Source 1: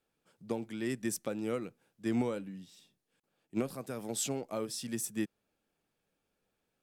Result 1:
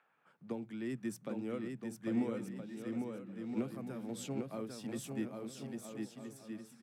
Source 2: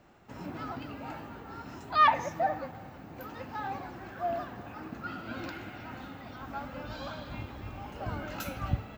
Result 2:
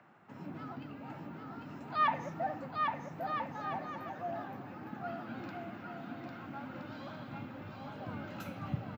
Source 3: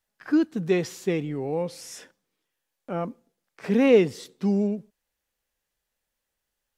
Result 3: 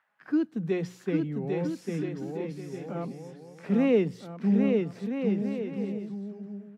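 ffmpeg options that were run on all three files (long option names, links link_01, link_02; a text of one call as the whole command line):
ffmpeg -i in.wav -filter_complex "[0:a]acrossover=split=190|840|2000[link_01][link_02][link_03][link_04];[link_03]acompressor=mode=upward:threshold=-48dB:ratio=2.5[link_05];[link_01][link_02][link_05][link_04]amix=inputs=4:normalize=0,highpass=frequency=130:width=0.5412,highpass=frequency=130:width=1.3066,bass=frequency=250:gain=9,treble=frequency=4000:gain=-7,bandreject=frequency=60:width_type=h:width=6,bandreject=frequency=120:width_type=h:width=6,bandreject=frequency=180:width_type=h:width=6,aecho=1:1:800|1320|1658|1878|2021:0.631|0.398|0.251|0.158|0.1,volume=-7.5dB" out.wav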